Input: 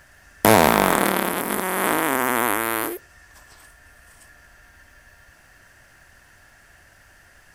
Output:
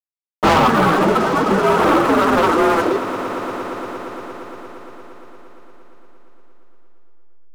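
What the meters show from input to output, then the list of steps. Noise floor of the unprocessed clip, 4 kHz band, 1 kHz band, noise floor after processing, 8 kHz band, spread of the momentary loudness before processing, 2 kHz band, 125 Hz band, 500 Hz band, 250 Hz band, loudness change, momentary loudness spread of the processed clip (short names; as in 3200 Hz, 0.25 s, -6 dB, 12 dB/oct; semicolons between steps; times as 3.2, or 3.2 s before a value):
-53 dBFS, +2.5 dB, +6.0 dB, under -85 dBFS, -8.5 dB, 9 LU, +2.0 dB, +6.0 dB, +6.5 dB, +6.5 dB, +3.5 dB, 18 LU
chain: inharmonic rescaling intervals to 123%; reverb removal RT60 1.9 s; elliptic band-pass 100–1300 Hz; notches 60/120/180/240 Hz; gate with hold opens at -35 dBFS; in parallel at +2.5 dB: compressor 10:1, threshold -32 dBFS, peak gain reduction 18 dB; on the sum: sample leveller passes 5; backlash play -31.5 dBFS; flange 0.53 Hz, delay 3.2 ms, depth 6.9 ms, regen -58%; on a send: swelling echo 0.116 s, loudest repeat 5, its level -17 dB; on the sum: Schroeder reverb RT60 3.4 s, combs from 26 ms, DRR 19 dB; gain +1 dB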